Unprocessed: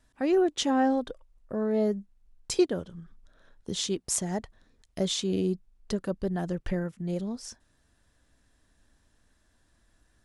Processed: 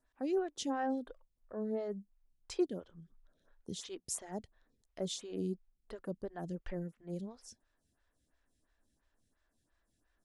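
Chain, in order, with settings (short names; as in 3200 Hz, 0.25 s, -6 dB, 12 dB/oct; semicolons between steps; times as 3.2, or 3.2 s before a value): photocell phaser 2.9 Hz; gain -8 dB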